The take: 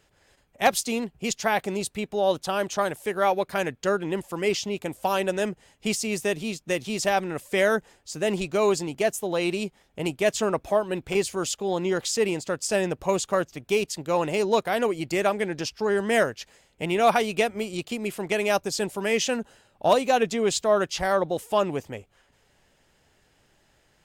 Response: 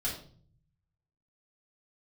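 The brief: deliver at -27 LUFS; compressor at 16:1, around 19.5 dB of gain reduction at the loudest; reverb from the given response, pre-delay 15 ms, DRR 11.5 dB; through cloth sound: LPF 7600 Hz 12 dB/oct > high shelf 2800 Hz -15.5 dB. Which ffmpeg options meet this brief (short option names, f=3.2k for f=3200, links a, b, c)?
-filter_complex "[0:a]acompressor=threshold=-34dB:ratio=16,asplit=2[a][b];[1:a]atrim=start_sample=2205,adelay=15[c];[b][c]afir=irnorm=-1:irlink=0,volume=-15.5dB[d];[a][d]amix=inputs=2:normalize=0,lowpass=7.6k,highshelf=f=2.8k:g=-15.5,volume=13.5dB"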